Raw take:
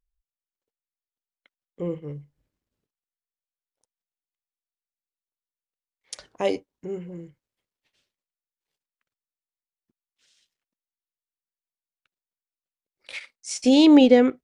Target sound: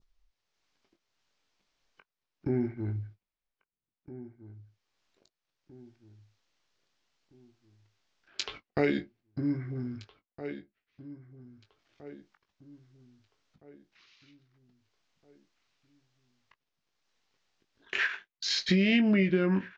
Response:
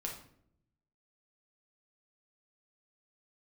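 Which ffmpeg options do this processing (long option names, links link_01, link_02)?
-filter_complex "[0:a]agate=range=-43dB:threshold=-47dB:ratio=16:detection=peak,acompressor=mode=upward:threshold=-29dB:ratio=2.5,lowpass=frequency=8100:width=0.5412,lowpass=frequency=8100:width=1.3066,asplit=2[link_01][link_02];[link_02]adelay=15,volume=-9dB[link_03];[link_01][link_03]amix=inputs=2:normalize=0,asplit=2[link_04][link_05];[link_05]adelay=1179,lowpass=frequency=4100:poles=1,volume=-16dB,asplit=2[link_06][link_07];[link_07]adelay=1179,lowpass=frequency=4100:poles=1,volume=0.41,asplit=2[link_08][link_09];[link_09]adelay=1179,lowpass=frequency=4100:poles=1,volume=0.41,asplit=2[link_10][link_11];[link_11]adelay=1179,lowpass=frequency=4100:poles=1,volume=0.41[link_12];[link_04][link_06][link_08][link_10][link_12]amix=inputs=5:normalize=0,asetrate=32193,aresample=44100,acompressor=threshold=-22dB:ratio=10,adynamicequalizer=threshold=0.00178:dfrequency=2200:dqfactor=1.6:tfrequency=2200:tqfactor=1.6:attack=5:release=100:ratio=0.375:range=3.5:mode=boostabove:tftype=bell"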